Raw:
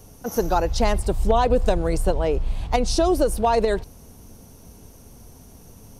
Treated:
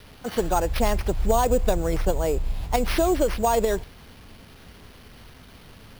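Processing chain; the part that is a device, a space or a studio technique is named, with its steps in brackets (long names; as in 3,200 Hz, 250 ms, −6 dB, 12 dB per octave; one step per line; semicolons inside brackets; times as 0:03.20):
early 8-bit sampler (sample-rate reduction 7,500 Hz, jitter 0%; bit reduction 8 bits)
level −2 dB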